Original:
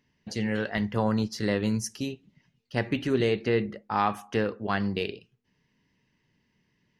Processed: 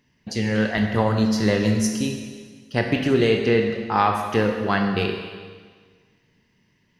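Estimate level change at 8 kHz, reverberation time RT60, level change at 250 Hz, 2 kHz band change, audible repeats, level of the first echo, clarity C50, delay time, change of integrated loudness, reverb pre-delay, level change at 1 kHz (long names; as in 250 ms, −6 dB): +7.5 dB, 1.6 s, +7.0 dB, +7.0 dB, no echo audible, no echo audible, 5.0 dB, no echo audible, +7.0 dB, 23 ms, +7.0 dB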